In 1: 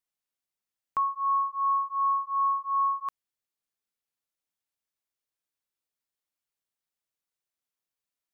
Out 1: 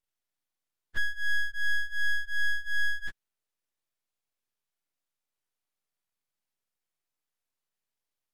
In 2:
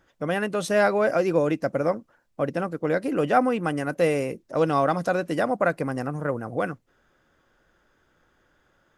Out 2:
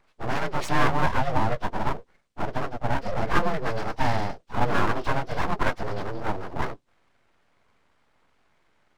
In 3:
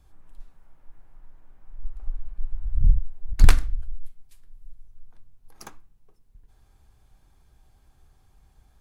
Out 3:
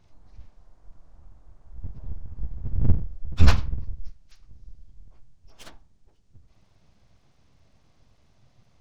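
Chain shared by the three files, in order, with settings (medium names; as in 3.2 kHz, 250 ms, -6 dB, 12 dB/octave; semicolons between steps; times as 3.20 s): frequency axis rescaled in octaves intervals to 81%; full-wave rectifier; trim +3 dB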